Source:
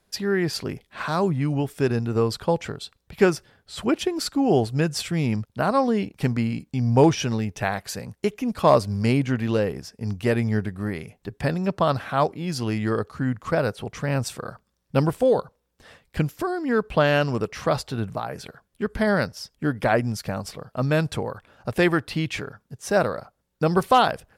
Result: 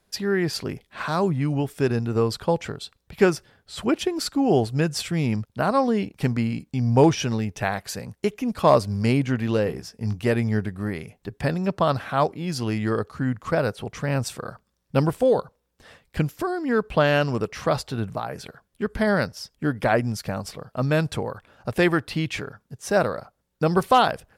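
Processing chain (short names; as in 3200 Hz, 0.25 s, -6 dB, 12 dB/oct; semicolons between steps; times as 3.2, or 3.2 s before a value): 9.64–10.19 doubler 18 ms -8 dB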